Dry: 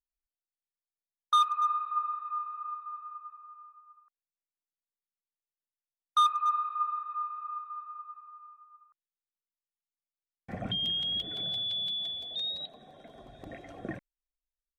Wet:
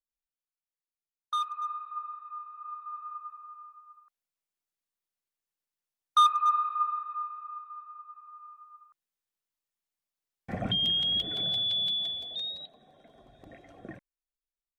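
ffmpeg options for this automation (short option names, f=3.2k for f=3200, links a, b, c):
-af "volume=10dB,afade=t=in:st=2.54:d=0.58:silence=0.334965,afade=t=out:st=6.68:d=0.78:silence=0.501187,afade=t=in:st=8.07:d=0.55:silence=0.446684,afade=t=out:st=11.9:d=0.81:silence=0.316228"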